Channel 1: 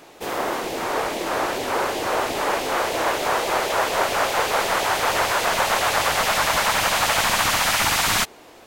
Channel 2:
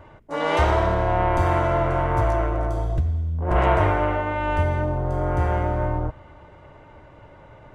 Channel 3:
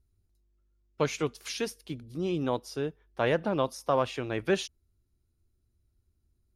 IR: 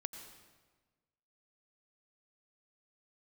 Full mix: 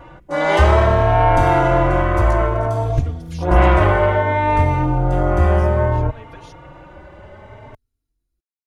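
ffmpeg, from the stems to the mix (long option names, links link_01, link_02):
-filter_complex "[1:a]acontrast=79,volume=3dB[link_01];[2:a]equalizer=frequency=120:width=1.4:gain=-8,adelay=1850,volume=1dB,asplit=3[link_02][link_03][link_04];[link_02]atrim=end=4.51,asetpts=PTS-STARTPTS,afade=type=out:start_time=4.506:duration=0.004:curve=hsin[link_05];[link_03]atrim=start=4.51:end=5.12,asetpts=PTS-STARTPTS,volume=0[link_06];[link_04]atrim=start=5.12,asetpts=PTS-STARTPTS,afade=type=in:duration=0.004:curve=hsin[link_07];[link_05][link_06][link_07]concat=n=3:v=0:a=1,acompressor=threshold=-38dB:ratio=3,volume=0dB[link_08];[link_01][link_08]amix=inputs=2:normalize=0,asplit=2[link_09][link_10];[link_10]adelay=3.7,afreqshift=0.6[link_11];[link_09][link_11]amix=inputs=2:normalize=1"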